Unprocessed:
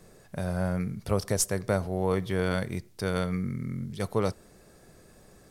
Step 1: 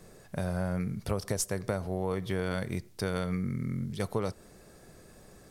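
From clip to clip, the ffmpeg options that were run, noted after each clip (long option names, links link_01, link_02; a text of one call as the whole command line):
ffmpeg -i in.wav -af "acompressor=threshold=-28dB:ratio=6,volume=1dB" out.wav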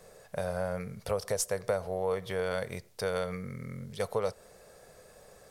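ffmpeg -i in.wav -af "lowshelf=frequency=400:width_type=q:width=3:gain=-6.5" out.wav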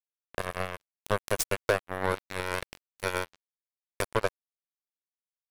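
ffmpeg -i in.wav -af "acrusher=bits=3:mix=0:aa=0.5,volume=4.5dB" out.wav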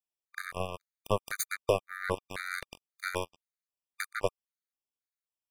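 ffmpeg -i in.wav -af "afftfilt=real='re*gt(sin(2*PI*1.9*pts/sr)*(1-2*mod(floor(b*sr/1024/1200),2)),0)':imag='im*gt(sin(2*PI*1.9*pts/sr)*(1-2*mod(floor(b*sr/1024/1200),2)),0)':win_size=1024:overlap=0.75" out.wav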